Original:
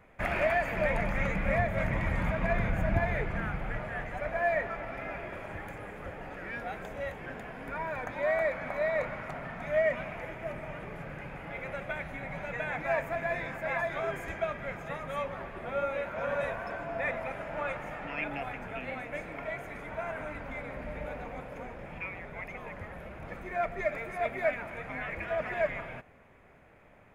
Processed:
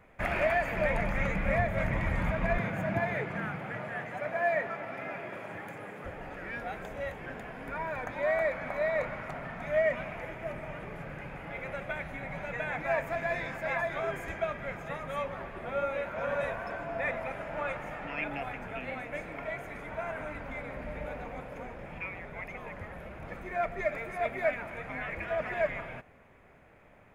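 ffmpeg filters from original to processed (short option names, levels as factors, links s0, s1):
-filter_complex "[0:a]asettb=1/sr,asplit=3[s0][s1][s2];[s0]atrim=end=2.584[s3];[s1]atrim=start=2.58:end=6.05,asetpts=PTS-STARTPTS,afade=t=in:d=0.004:c=qsin,afade=t=out:st=3.466:d=0.004:c=qsin,highpass=f=120:w=0.5412,highpass=f=120:w=1.3066[s4];[s2]atrim=start=6.046[s5];[s3][s4]acrossfade=d=0.004:c1=hsin:c2=qsin[s6];[s6][s5]acrossfade=d=0.004:c1=qsin:c2=hsin,asettb=1/sr,asplit=3[s7][s8][s9];[s7]atrim=end=13.074[s10];[s8]atrim=start=13.07:end=13.75,asetpts=PTS-STARTPTS,afade=t=in:d=0.004:c=qsin,afade=t=out:st=0.676:d=0.004:c=qsin,equalizer=f=5100:t=o:w=1.2:g=5[s11];[s9]atrim=start=13.746[s12];[s10][s11]acrossfade=d=0.004:c1=hsin:c2=qsin[s13];[s13][s12]acrossfade=d=0.004:c1=qsin:c2=hsin"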